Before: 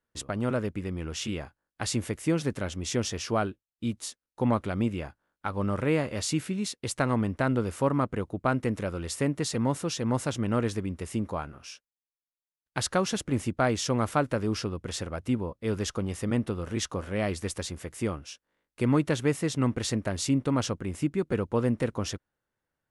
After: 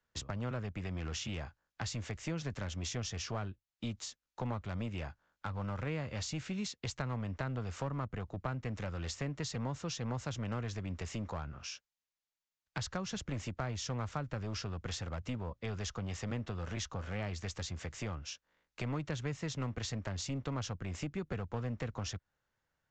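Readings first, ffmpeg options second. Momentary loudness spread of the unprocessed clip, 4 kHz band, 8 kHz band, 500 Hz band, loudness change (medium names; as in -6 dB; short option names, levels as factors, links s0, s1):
9 LU, -6.5 dB, -9.0 dB, -13.5 dB, -10.0 dB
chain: -filter_complex "[0:a]equalizer=f=320:w=0.9:g=-7,acrossover=split=93|220[s0][s1][s2];[s0]acompressor=threshold=0.00501:ratio=4[s3];[s1]acompressor=threshold=0.00501:ratio=4[s4];[s2]acompressor=threshold=0.00708:ratio=4[s5];[s3][s4][s5]amix=inputs=3:normalize=0,aresample=16000,aeval=exprs='clip(val(0),-1,0.015)':c=same,aresample=44100,volume=1.41"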